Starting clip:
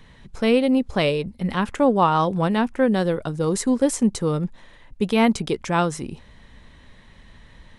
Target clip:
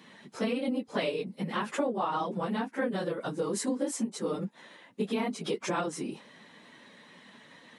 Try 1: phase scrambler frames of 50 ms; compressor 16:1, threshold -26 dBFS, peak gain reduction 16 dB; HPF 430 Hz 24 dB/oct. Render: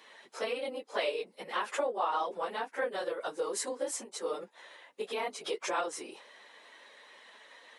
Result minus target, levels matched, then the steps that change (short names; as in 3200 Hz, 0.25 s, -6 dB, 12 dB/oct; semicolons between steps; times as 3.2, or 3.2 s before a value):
250 Hz band -13.0 dB
change: HPF 200 Hz 24 dB/oct